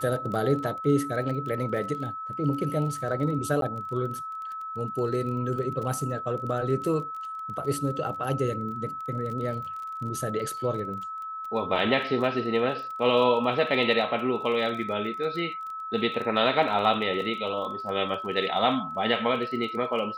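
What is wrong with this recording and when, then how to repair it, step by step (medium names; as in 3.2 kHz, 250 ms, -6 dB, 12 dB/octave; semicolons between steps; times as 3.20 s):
crackle 24 per s -35 dBFS
whine 1.3 kHz -33 dBFS
3.61–3.62 s: dropout 12 ms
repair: de-click; band-stop 1.3 kHz, Q 30; interpolate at 3.61 s, 12 ms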